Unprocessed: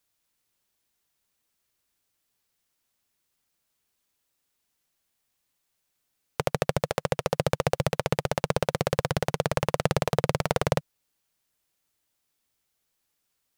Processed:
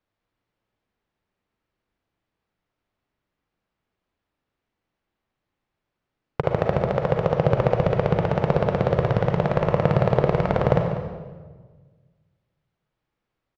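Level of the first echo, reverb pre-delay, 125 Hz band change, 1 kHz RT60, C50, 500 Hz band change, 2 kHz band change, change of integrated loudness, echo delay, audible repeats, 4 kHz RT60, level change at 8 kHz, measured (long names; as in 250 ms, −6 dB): −14.0 dB, 37 ms, +8.0 dB, 1.3 s, 3.5 dB, +6.0 dB, +0.5 dB, +5.5 dB, 195 ms, 1, 1.1 s, below −15 dB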